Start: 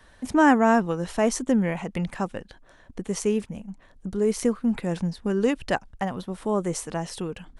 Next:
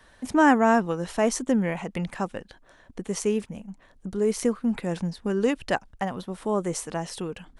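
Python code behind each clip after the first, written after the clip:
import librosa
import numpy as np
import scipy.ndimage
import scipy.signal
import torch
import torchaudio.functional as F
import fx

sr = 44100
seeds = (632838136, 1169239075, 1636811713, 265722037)

y = fx.low_shelf(x, sr, hz=160.0, db=-4.5)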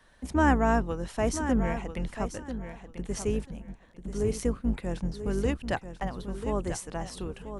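y = fx.octave_divider(x, sr, octaves=2, level_db=1.0)
y = fx.echo_feedback(y, sr, ms=990, feedback_pct=18, wet_db=-10.0)
y = y * librosa.db_to_amplitude(-5.5)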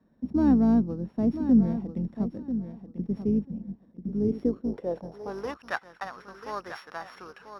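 y = np.r_[np.sort(x[:len(x) // 8 * 8].reshape(-1, 8), axis=1).ravel(), x[len(x) // 8 * 8:]]
y = fx.filter_sweep_bandpass(y, sr, from_hz=220.0, to_hz=1400.0, start_s=4.18, end_s=5.72, q=2.5)
y = y * librosa.db_to_amplitude(9.0)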